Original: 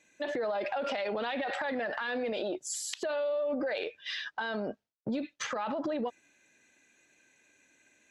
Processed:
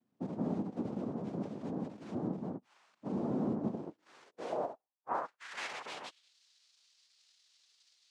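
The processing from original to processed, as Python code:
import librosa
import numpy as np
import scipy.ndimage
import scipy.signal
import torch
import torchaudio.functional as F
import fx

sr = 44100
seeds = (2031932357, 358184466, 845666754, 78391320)

y = fx.hpss(x, sr, part='percussive', gain_db=-16)
y = fx.noise_vocoder(y, sr, seeds[0], bands=2)
y = fx.filter_sweep_bandpass(y, sr, from_hz=220.0, to_hz=4400.0, start_s=3.7, end_s=6.38, q=2.2)
y = y * librosa.db_to_amplitude(5.0)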